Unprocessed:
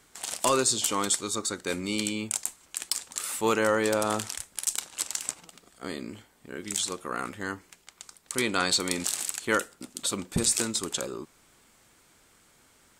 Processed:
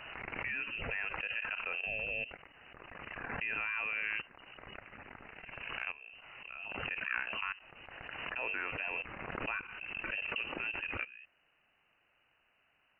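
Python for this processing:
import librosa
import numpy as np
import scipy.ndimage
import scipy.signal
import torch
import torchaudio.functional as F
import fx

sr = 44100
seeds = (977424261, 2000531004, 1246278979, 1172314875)

y = fx.level_steps(x, sr, step_db=17)
y = fx.freq_invert(y, sr, carrier_hz=2900)
y = fx.pre_swell(y, sr, db_per_s=26.0)
y = F.gain(torch.from_numpy(y), -3.0).numpy()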